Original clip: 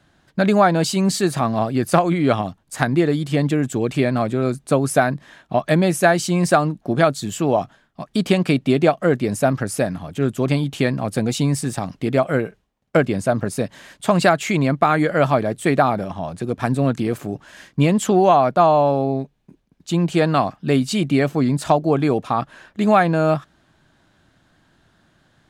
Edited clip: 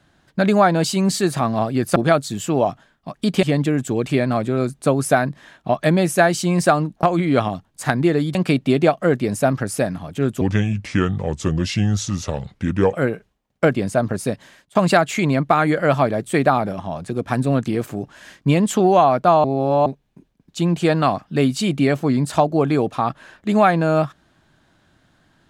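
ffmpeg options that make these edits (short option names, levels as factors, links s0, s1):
-filter_complex "[0:a]asplit=10[s0][s1][s2][s3][s4][s5][s6][s7][s8][s9];[s0]atrim=end=1.962[s10];[s1]atrim=start=6.878:end=8.352[s11];[s2]atrim=start=3.278:end=6.882[s12];[s3]atrim=start=1.958:end=3.282[s13];[s4]atrim=start=8.348:end=10.414[s14];[s5]atrim=start=10.41:end=12.25,asetpts=PTS-STARTPTS,asetrate=32193,aresample=44100,atrim=end_sample=111156,asetpts=PTS-STARTPTS[s15];[s6]atrim=start=12.246:end=14.07,asetpts=PTS-STARTPTS,afade=t=out:st=1.374:d=0.45:silence=0.0630957[s16];[s7]atrim=start=14.07:end=18.762,asetpts=PTS-STARTPTS,afade=t=in:d=0.004:c=hsin:silence=0.0630957[s17];[s8]atrim=start=18.758:end=19.182,asetpts=PTS-STARTPTS,areverse[s18];[s9]atrim=start=19.178[s19];[s10][s11]acrossfade=d=0.004:c1=hsin:c2=hsin[s20];[s20][s12]acrossfade=d=0.004:c1=hsin:c2=hsin[s21];[s21][s13]acrossfade=d=0.004:c1=hsin:c2=hsin[s22];[s22][s14]acrossfade=d=0.004:c1=hsin:c2=hsin[s23];[s23][s15]acrossfade=d=0.004:c1=hsin:c2=hsin[s24];[s16][s17]concat=n=2:v=0:a=1[s25];[s24][s25]acrossfade=d=0.004:c1=hsin:c2=hsin[s26];[s26][s18]acrossfade=d=0.004:c1=hsin:c2=hsin[s27];[s27][s19]acrossfade=d=0.004:c1=hsin:c2=hsin"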